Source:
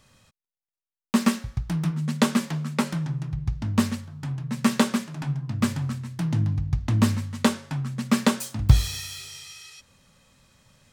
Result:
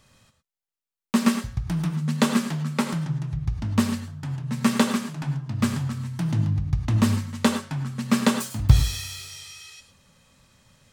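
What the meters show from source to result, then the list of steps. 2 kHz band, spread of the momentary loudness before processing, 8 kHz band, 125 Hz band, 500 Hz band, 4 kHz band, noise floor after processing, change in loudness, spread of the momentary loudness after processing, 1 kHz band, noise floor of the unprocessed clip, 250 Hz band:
+0.5 dB, 11 LU, +0.5 dB, +1.0 dB, +0.5 dB, +0.5 dB, below −85 dBFS, +1.0 dB, 10 LU, +0.5 dB, below −85 dBFS, +1.0 dB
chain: reverb whose tail is shaped and stops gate 130 ms rising, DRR 8 dB

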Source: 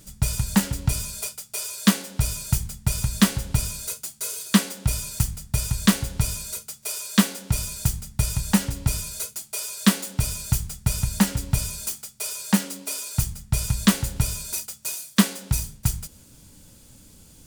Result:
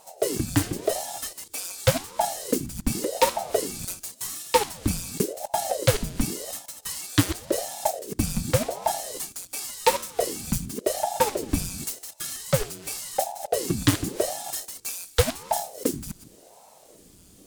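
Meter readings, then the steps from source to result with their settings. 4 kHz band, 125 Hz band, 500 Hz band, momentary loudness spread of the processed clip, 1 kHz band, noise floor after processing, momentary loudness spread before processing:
−2.5 dB, −5.5 dB, +13.0 dB, 9 LU, +7.5 dB, −53 dBFS, 9 LU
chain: delay that plays each chunk backwards 148 ms, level −10.5 dB
ring modulator whose carrier an LFO sweeps 430 Hz, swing 80%, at 0.9 Hz

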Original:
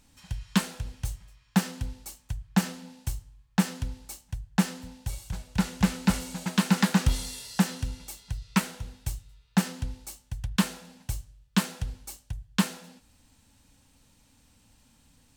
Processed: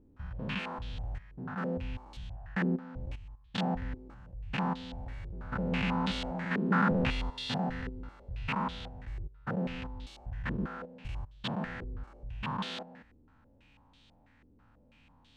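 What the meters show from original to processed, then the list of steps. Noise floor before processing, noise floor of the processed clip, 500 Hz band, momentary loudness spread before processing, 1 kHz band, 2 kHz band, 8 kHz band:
−63 dBFS, −63 dBFS, +2.5 dB, 14 LU, 0.0 dB, −2.0 dB, below −20 dB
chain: spectrum averaged block by block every 200 ms
low-pass on a step sequencer 6.1 Hz 390–3,500 Hz

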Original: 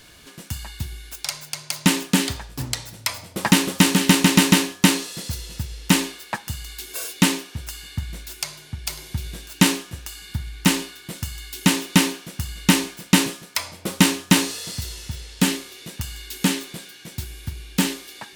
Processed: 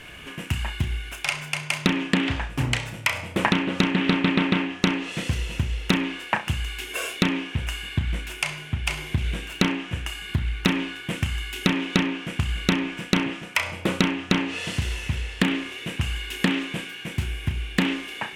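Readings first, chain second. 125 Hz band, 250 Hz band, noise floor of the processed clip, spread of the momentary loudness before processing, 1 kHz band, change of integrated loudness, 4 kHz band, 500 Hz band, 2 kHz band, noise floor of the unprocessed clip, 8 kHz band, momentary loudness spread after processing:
−1.0 dB, −3.5 dB, −39 dBFS, 17 LU, −2.0 dB, −4.0 dB, −4.5 dB, −0.5 dB, 0.0 dB, −46 dBFS, −13.0 dB, 7 LU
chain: treble cut that deepens with the level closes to 2,700 Hz, closed at −14.5 dBFS
high shelf with overshoot 3,400 Hz −7.5 dB, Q 3
downward compressor 10 to 1, threshold −23 dBFS, peak gain reduction 14.5 dB
flutter between parallel walls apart 5.7 metres, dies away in 0.24 s
highs frequency-modulated by the lows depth 0.48 ms
level +5.5 dB

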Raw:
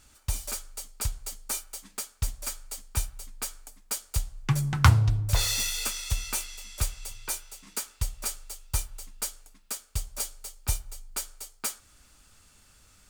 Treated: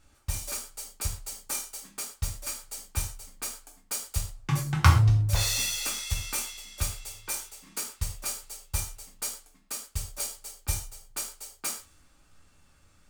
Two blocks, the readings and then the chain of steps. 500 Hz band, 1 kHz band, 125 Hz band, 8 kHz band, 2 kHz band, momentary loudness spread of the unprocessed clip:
0.0 dB, +0.5 dB, +0.5 dB, 0.0 dB, 0.0 dB, 13 LU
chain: reverb whose tail is shaped and stops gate 150 ms falling, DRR −0.5 dB
one half of a high-frequency compander decoder only
level −3 dB

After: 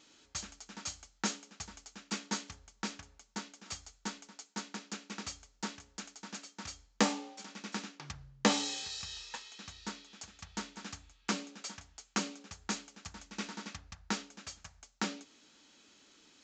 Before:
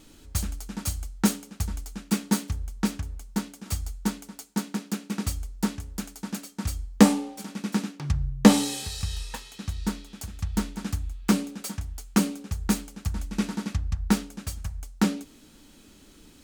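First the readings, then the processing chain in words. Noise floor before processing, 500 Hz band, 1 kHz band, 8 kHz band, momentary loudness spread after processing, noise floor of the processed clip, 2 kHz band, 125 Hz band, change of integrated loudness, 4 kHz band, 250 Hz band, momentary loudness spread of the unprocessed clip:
−53 dBFS, −10.0 dB, −6.5 dB, −6.5 dB, 15 LU, −69 dBFS, −4.5 dB, −19.5 dB, −11.5 dB, −3.5 dB, −16.0 dB, 13 LU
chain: downsampling to 16,000 Hz
high-pass filter 910 Hz 6 dB per octave
level −3.5 dB

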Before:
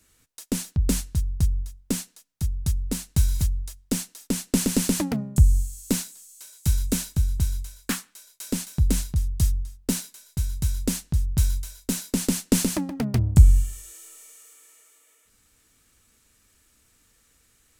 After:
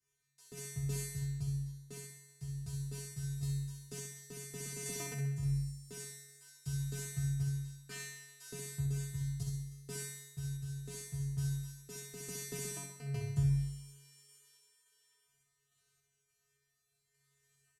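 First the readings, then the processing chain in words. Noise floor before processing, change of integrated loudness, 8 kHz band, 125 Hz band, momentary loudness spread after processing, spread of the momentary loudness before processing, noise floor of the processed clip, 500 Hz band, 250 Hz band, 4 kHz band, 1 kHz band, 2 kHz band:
−64 dBFS, −14.5 dB, −13.5 dB, −11.0 dB, 12 LU, 12 LU, −81 dBFS, −13.0 dB, −17.5 dB, −15.0 dB, −16.0 dB, −10.5 dB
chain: low-pass filter 11,000 Hz 12 dB per octave
notch filter 3,800 Hz, Q 29
in parallel at −0.5 dB: brickwall limiter −14 dBFS, peak gain reduction 11.5 dB
on the sum: tuned comb filter 140 Hz, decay 1 s, harmonics odd, mix 100%
sample-and-hold tremolo
on a send: repeating echo 65 ms, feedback 46%, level −5 dB
on the sum: level +2 dB

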